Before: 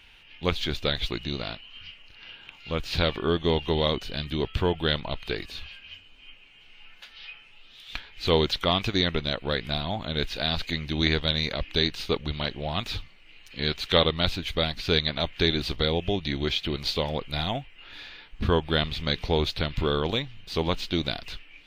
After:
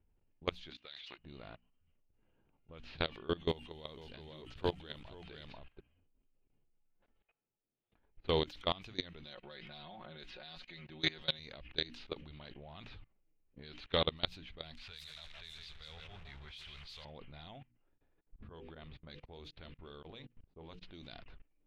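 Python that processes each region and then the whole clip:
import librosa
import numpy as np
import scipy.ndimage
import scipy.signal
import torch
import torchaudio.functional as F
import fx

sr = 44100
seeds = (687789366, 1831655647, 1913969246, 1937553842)

y = fx.chain(x, sr, fx.bandpass_q(hz=5300.0, q=0.74),
    fx.transient(attack_db=3, sustain_db=11), at=(0.7, 1.18))
y = fx.chain(y, sr, fx.echo_single(ms=489, db=-4.0),
    fx.backlash(play_db=-46.0), at=(3.48, 5.8))
y = fx.chain(y, sr, fx.highpass(hz=180.0, slope=6),
    fx.high_shelf(hz=7800.0, db=-9.5), at=(7.21, 7.99))
y = fx.chain(y, sr, fx.low_shelf(hz=230.0, db=-10.0),
    fx.comb(ms=5.5, depth=0.85), at=(9.24, 11.39))
y = fx.chain(y, sr, fx.zero_step(step_db=-27.5),
    fx.tone_stack(knobs='10-0-10'),
    fx.echo_crushed(ms=164, feedback_pct=35, bits=7, wet_db=-5), at=(14.75, 17.05))
y = fx.chain(y, sr, fx.hum_notches(base_hz=50, count=10),
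    fx.tremolo_abs(hz=3.9), at=(17.6, 20.83))
y = fx.env_lowpass(y, sr, base_hz=350.0, full_db=-21.0)
y = fx.hum_notches(y, sr, base_hz=60, count=5)
y = fx.level_steps(y, sr, step_db=22)
y = F.gain(torch.from_numpy(y), -7.0).numpy()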